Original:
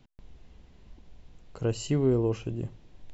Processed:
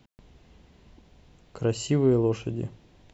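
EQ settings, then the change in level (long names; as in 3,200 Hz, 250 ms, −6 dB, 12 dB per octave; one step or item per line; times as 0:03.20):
high-pass filter 87 Hz 6 dB per octave
+3.5 dB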